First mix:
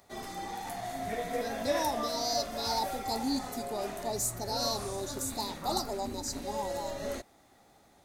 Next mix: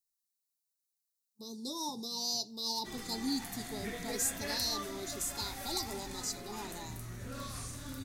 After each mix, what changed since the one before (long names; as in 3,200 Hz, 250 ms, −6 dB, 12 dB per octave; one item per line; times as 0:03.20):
background: entry +2.75 s
master: add parametric band 660 Hz −14.5 dB 1.1 octaves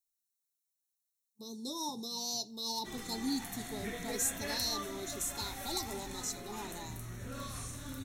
master: add Butterworth band-reject 4,800 Hz, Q 7.7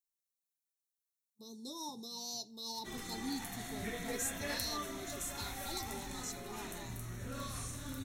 speech −5.5 dB